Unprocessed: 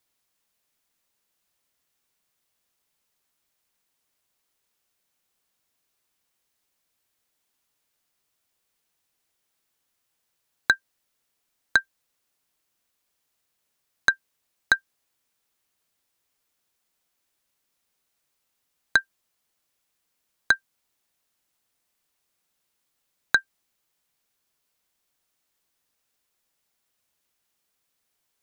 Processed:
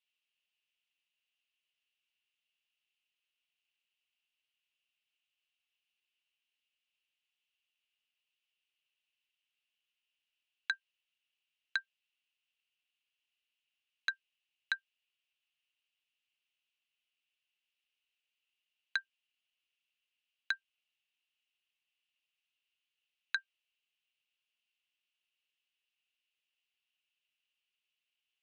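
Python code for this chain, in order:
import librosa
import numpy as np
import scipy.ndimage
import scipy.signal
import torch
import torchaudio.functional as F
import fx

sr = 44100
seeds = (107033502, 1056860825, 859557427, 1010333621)

y = fx.bandpass_q(x, sr, hz=2800.0, q=7.7)
y = y * librosa.db_to_amplitude(4.5)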